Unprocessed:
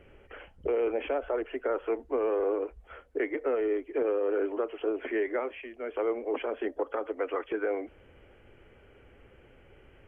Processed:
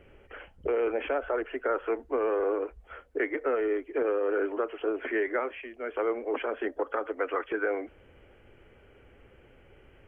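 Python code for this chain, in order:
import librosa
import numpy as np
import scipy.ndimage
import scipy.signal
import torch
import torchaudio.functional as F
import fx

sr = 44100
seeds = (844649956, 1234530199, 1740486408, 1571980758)

y = fx.dynamic_eq(x, sr, hz=1500.0, q=1.6, threshold_db=-50.0, ratio=4.0, max_db=7)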